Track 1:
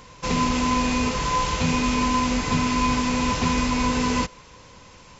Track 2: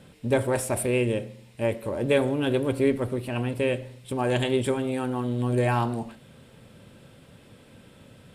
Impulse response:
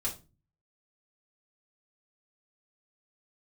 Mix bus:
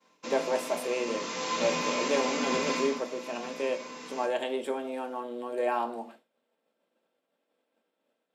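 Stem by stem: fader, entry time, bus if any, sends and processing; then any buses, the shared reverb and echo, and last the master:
0:00.91 −12 dB → 0:01.54 −4.5 dB → 0:02.76 −4.5 dB → 0:03.03 −17 dB, 0.00 s, send −3.5 dB, automatic ducking −12 dB, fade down 0.50 s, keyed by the second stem
−11.0 dB, 0.00 s, send −7.5 dB, high-pass filter 310 Hz 6 dB per octave; parametric band 690 Hz +8.5 dB 1.5 octaves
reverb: on, RT60 0.30 s, pre-delay 3 ms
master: high-pass filter 230 Hz 24 dB per octave; downward expander −47 dBFS; parametric band 9,400 Hz −9 dB 0.28 octaves

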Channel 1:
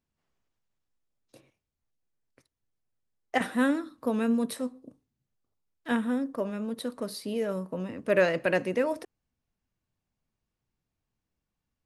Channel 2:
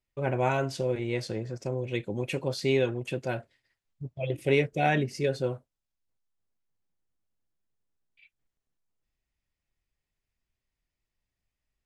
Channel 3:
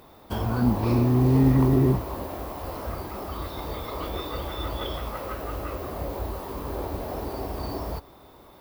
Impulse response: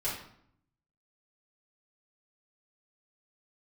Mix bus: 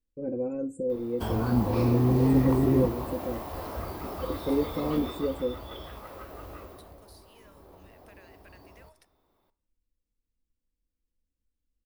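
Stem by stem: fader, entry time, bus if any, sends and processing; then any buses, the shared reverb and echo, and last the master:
−7.5 dB, 0.00 s, send −20 dB, guitar amp tone stack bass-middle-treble 10-0-10; downward compressor, threshold −48 dBFS, peak gain reduction 17.5 dB
−1.0 dB, 0.00 s, send −24 dB, drawn EQ curve 480 Hz 0 dB, 790 Hz −25 dB, 5,300 Hz −30 dB, 7,600 Hz −5 dB; spectral peaks only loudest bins 64; comb filter 3.8 ms, depth 90%
0:04.90 −3 dB → 0:05.48 −10.5 dB → 0:06.57 −10.5 dB → 0:07.05 −22 dB, 0.90 s, send −19 dB, no processing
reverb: on, RT60 0.65 s, pre-delay 3 ms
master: no processing

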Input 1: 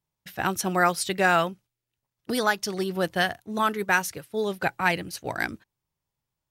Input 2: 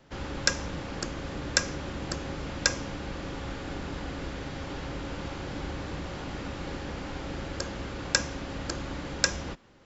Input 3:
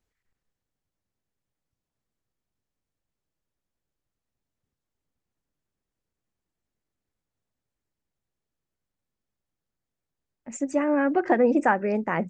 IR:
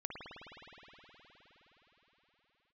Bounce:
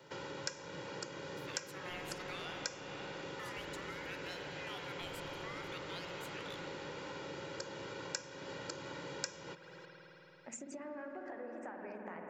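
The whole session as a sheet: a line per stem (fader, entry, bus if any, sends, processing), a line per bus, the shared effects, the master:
−9.5 dB, 1.10 s, bus A, send −3.5 dB, ring modulator whose carrier an LFO sweeps 1,900 Hz, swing 25%, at 0.6 Hz
−1.0 dB, 0.00 s, no bus, send −16 dB, high-pass filter 140 Hz 24 dB per octave; comb filter 2.1 ms, depth 68%
−4.0 dB, 0.00 s, bus A, send −4 dB, downward compressor, threshold −30 dBFS, peak gain reduction 14 dB
bus A: 0.0 dB, high-pass filter 400 Hz 12 dB per octave; downward compressor, threshold −43 dBFS, peak gain reduction 13.5 dB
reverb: on, RT60 5.0 s, pre-delay 52 ms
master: downward compressor 2.5 to 1, threshold −46 dBFS, peak gain reduction 19.5 dB

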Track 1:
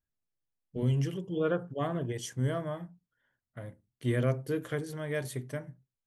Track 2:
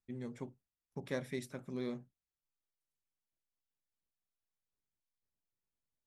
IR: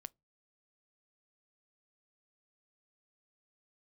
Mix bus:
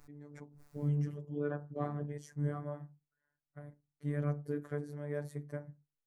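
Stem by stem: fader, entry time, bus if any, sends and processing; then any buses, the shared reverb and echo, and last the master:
−3.5 dB, 0.00 s, no send, no processing
−5.5 dB, 0.00 s, muted 0:00.88–0:01.76, no send, background raised ahead of every attack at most 29 dB per second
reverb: not used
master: parametric band 3,100 Hz −14 dB 0.68 octaves; phases set to zero 146 Hz; high-shelf EQ 4,100 Hz −11.5 dB

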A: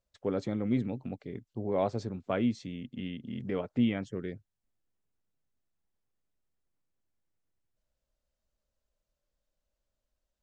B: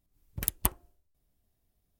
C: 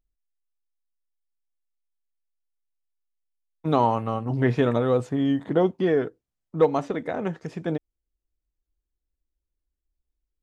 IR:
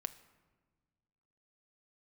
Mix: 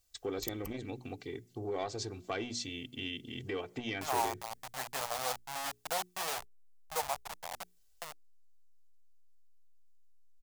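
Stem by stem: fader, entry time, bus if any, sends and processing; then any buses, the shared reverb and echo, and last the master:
−3.0 dB, 0.00 s, bus A, send −13 dB, high-shelf EQ 2,200 Hz +9.5 dB; soft clipping −18.5 dBFS, distortion −20 dB
−9.0 dB, 0.00 s, bus A, no send, phaser with its sweep stopped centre 2,400 Hz, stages 8; automatic ducking −12 dB, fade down 1.75 s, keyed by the first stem
−17.5 dB, 0.35 s, no bus, no send, hold until the input has moved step −20 dBFS; low shelf with overshoot 510 Hz −14 dB, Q 3; automatic gain control gain up to 7 dB
bus A: 0.0 dB, comb filter 2.6 ms, depth 96%; downward compressor 2 to 1, threshold −39 dBFS, peak gain reduction 7 dB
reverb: on, RT60 1.4 s, pre-delay 5 ms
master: high-shelf EQ 3,200 Hz +9.5 dB; mains-hum notches 60/120/180/240/300/360/420 Hz; saturating transformer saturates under 970 Hz

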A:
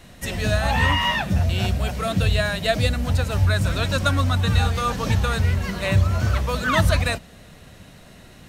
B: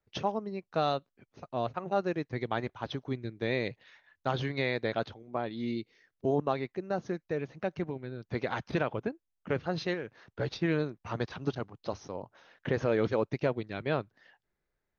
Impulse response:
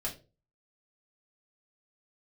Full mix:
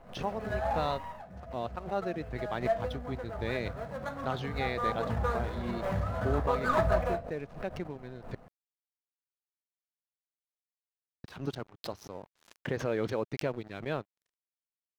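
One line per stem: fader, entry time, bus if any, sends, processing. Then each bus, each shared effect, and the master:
0:00.73 −10.5 dB → 0:01.22 −21.5 dB → 0:02.19 −21.5 dB → 0:02.59 −13.5 dB → 0:04.45 −13.5 dB → 0:05.21 −6 dB, 0.00 s, send −12 dB, running median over 25 samples; flat-topped bell 1,000 Hz +10.5 dB 2.3 octaves; automatic ducking −11 dB, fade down 0.25 s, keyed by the second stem
−3.5 dB, 0.00 s, muted 0:08.35–0:11.24, no send, dead-zone distortion −52 dBFS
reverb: on, RT60 0.35 s, pre-delay 4 ms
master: background raised ahead of every attack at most 130 dB per second

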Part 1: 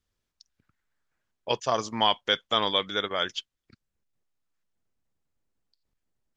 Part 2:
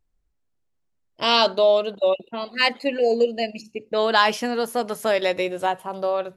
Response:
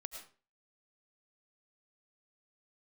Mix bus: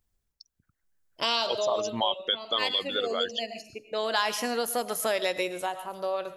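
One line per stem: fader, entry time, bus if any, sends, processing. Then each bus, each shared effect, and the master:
0.0 dB, 0.00 s, no send, spectral envelope exaggerated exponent 2
−3.0 dB, 0.00 s, send −5 dB, low-shelf EQ 330 Hz −6.5 dB; automatic ducking −11 dB, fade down 0.25 s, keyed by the first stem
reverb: on, RT60 0.40 s, pre-delay 65 ms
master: high-shelf EQ 6,600 Hz +11.5 dB; downward compressor 2 to 1, threshold −27 dBFS, peak gain reduction 7.5 dB

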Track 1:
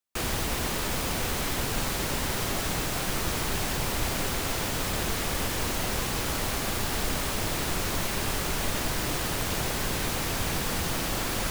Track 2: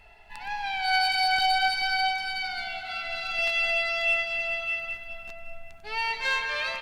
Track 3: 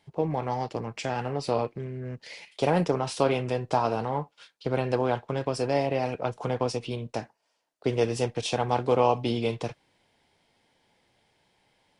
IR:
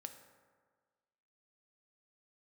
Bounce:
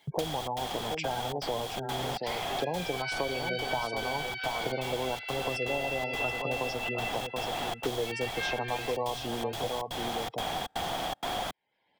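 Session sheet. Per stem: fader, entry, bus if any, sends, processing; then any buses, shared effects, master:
−17.5 dB, 0.00 s, send −22.5 dB, no echo send, gate pattern "x.xxx.xxx" 159 BPM −60 dB; hollow resonant body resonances 740/3,300 Hz, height 17 dB, ringing for 20 ms
−3.5 dB, 2.15 s, no send, echo send −15 dB, four-pole ladder band-pass 2,300 Hz, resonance 30%
−5.5 dB, 0.00 s, no send, echo send −9 dB, gate on every frequency bin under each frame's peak −15 dB strong; noise gate with hold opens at −56 dBFS; low-shelf EQ 310 Hz −6.5 dB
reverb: on, RT60 1.6 s, pre-delay 3 ms
echo: single-tap delay 727 ms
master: parametric band 3,200 Hz +4.5 dB 2.8 octaves; multiband upward and downward compressor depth 100%

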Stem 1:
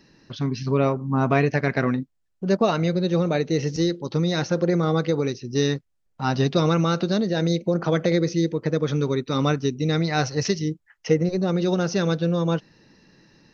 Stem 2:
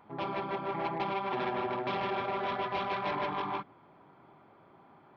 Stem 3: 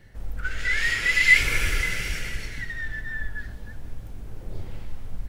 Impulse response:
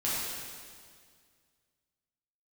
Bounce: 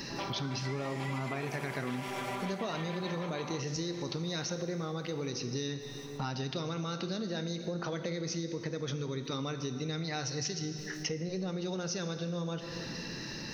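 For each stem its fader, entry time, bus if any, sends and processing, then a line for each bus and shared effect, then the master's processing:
−10.0 dB, 0.00 s, send −15 dB, no echo send, envelope flattener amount 50%
−2.0 dB, 0.00 s, no send, echo send −15 dB, no processing
+2.0 dB, 0.00 s, muted 0:03.25–0:04.23, no send, echo send −15 dB, downward compressor, threshold −27 dBFS, peak gain reduction 15.5 dB; four-pole ladder high-pass 510 Hz, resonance 70%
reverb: on, RT60 2.0 s, pre-delay 6 ms
echo: repeating echo 884 ms, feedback 54%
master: high-shelf EQ 2,800 Hz +8.5 dB; downward compressor 6 to 1, threshold −33 dBFS, peak gain reduction 12.5 dB

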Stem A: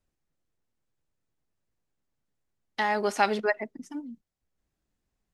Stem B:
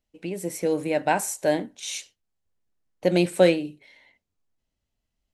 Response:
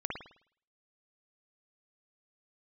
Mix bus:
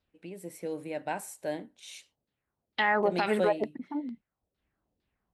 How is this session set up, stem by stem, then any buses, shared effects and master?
+1.5 dB, 0.00 s, no send, auto-filter low-pass saw down 2.2 Hz 430–4,600 Hz
−11.5 dB, 0.00 s, no send, no processing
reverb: not used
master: high-pass filter 45 Hz; parametric band 6,300 Hz −6 dB 0.61 octaves; brickwall limiter −15.5 dBFS, peak gain reduction 11.5 dB

